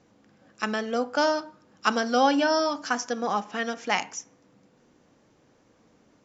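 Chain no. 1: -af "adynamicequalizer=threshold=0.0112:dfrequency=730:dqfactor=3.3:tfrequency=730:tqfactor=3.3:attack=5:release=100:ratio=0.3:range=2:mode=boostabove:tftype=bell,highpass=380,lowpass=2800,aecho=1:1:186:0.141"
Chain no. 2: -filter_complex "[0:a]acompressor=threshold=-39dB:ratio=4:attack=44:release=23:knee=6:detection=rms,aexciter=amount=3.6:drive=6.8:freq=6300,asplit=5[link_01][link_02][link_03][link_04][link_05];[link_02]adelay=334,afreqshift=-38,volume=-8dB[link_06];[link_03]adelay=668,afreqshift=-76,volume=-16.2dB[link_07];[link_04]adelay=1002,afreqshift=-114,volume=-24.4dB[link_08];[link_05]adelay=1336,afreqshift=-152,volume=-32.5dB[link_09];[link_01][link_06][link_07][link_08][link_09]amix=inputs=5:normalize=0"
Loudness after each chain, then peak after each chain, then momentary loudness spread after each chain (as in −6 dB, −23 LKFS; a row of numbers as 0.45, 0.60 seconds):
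−26.0, −35.0 LKFS; −7.0, −16.5 dBFS; 11, 10 LU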